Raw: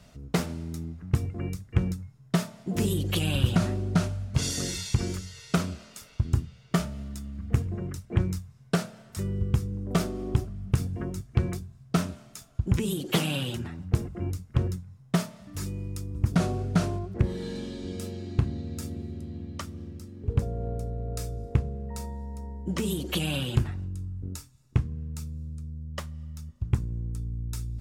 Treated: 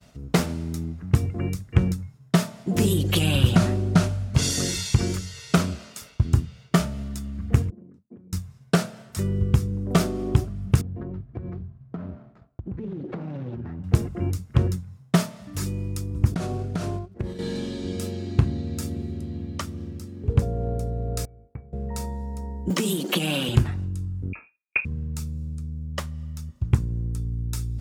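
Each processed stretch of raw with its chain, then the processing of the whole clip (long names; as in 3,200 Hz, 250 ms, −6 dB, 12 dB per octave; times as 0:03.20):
0:07.70–0:08.33: drawn EQ curve 110 Hz 0 dB, 240 Hz +12 dB, 410 Hz −14 dB, 900 Hz −3 dB + downward compressor 12 to 1, threshold −32 dBFS + resonant band-pass 430 Hz, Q 3.3
0:10.81–0:13.84: running median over 15 samples + head-to-tape spacing loss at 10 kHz 38 dB + downward compressor 10 to 1, threshold −34 dBFS
0:16.34–0:17.39: downward expander −27 dBFS + downward compressor 12 to 1, threshold −28 dBFS
0:21.25–0:21.73: Butterworth low-pass 2,200 Hz + tuned comb filter 770 Hz, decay 0.21 s, harmonics odd, mix 90%
0:22.70–0:23.49: mu-law and A-law mismatch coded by A + Butterworth high-pass 160 Hz + multiband upward and downward compressor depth 100%
0:24.33–0:24.85: high-pass filter 170 Hz + voice inversion scrambler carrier 2,600 Hz
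whole clip: downward expander −49 dBFS; high-pass filter 47 Hz; level +5.5 dB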